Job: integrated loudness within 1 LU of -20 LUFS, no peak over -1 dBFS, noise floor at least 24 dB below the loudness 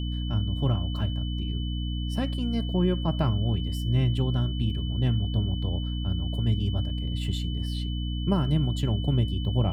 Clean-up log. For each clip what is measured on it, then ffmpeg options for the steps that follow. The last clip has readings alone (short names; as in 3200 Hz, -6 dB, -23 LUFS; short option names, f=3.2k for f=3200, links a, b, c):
hum 60 Hz; harmonics up to 300 Hz; hum level -27 dBFS; steady tone 3000 Hz; tone level -40 dBFS; loudness -27.5 LUFS; peak -11.5 dBFS; loudness target -20.0 LUFS
-> -af "bandreject=f=60:t=h:w=4,bandreject=f=120:t=h:w=4,bandreject=f=180:t=h:w=4,bandreject=f=240:t=h:w=4,bandreject=f=300:t=h:w=4"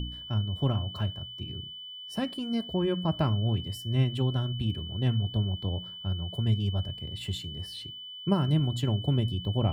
hum none; steady tone 3000 Hz; tone level -40 dBFS
-> -af "bandreject=f=3k:w=30"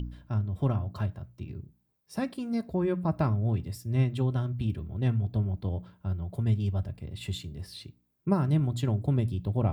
steady tone none; loudness -30.0 LUFS; peak -13.5 dBFS; loudness target -20.0 LUFS
-> -af "volume=10dB"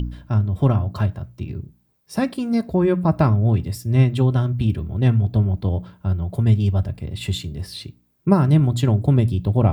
loudness -20.0 LUFS; peak -3.5 dBFS; noise floor -63 dBFS